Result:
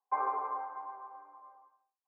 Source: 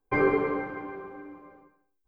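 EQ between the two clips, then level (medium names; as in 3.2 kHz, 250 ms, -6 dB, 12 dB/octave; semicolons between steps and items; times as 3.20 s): Butterworth band-pass 920 Hz, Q 2.3; +1.5 dB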